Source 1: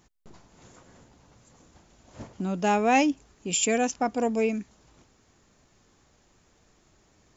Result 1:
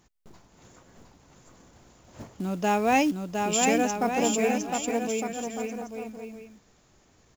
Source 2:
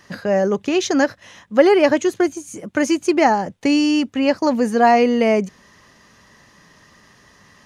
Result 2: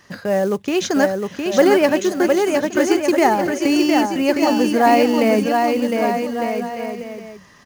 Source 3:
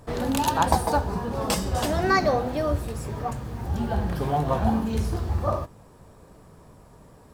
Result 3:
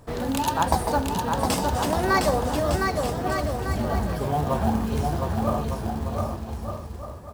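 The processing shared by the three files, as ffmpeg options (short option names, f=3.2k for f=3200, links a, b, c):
-af "aecho=1:1:710|1207|1555|1798|1969:0.631|0.398|0.251|0.158|0.1,acrusher=bits=6:mode=log:mix=0:aa=0.000001,volume=-1dB"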